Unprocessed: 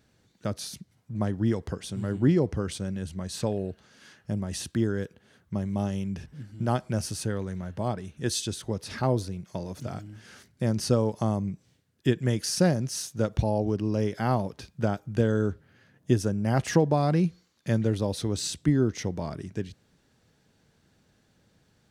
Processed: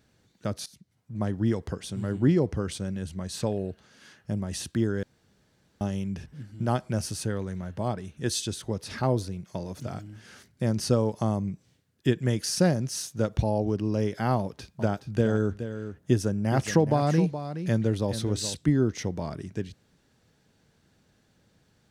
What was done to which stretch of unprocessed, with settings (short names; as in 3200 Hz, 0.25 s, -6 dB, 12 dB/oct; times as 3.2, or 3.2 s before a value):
0.66–1.32 fade in, from -18 dB
5.03–5.81 room tone
14.37–18.57 echo 0.421 s -10.5 dB